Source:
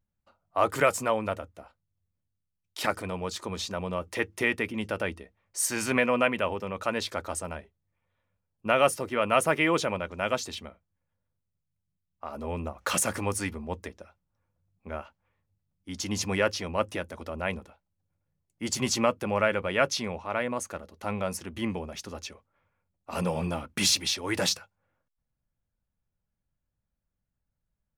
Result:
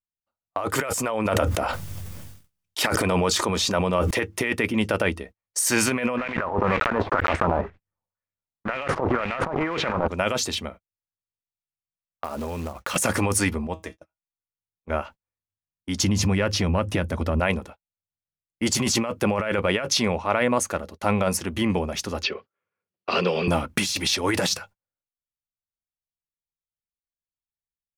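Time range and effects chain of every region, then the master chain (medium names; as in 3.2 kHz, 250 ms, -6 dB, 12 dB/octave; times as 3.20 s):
0.74–4.11 s: bass shelf 230 Hz -4.5 dB + band-stop 4.1 kHz, Q 21 + decay stretcher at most 23 dB/s
6.17–10.08 s: block-companded coder 3-bit + transient shaper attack -4 dB, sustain +12 dB + LFO low-pass sine 2 Hz 830–2400 Hz
12.24–12.96 s: compression, threshold -36 dBFS + short-mantissa float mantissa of 2-bit
13.67–14.90 s: band-stop 1.4 kHz, Q 26 + feedback comb 160 Hz, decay 0.2 s, mix 70%
16.03–17.40 s: tone controls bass +10 dB, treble -3 dB + compression 12:1, threshold -27 dBFS
22.23–23.48 s: cabinet simulation 260–4800 Hz, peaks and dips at 280 Hz -7 dB, 400 Hz +8 dB, 610 Hz -5 dB, 880 Hz -9 dB, 2.9 kHz +6 dB, 4.6 kHz +8 dB + three bands compressed up and down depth 70%
whole clip: gate -50 dBFS, range -33 dB; compressor with a negative ratio -30 dBFS, ratio -1; trim +7 dB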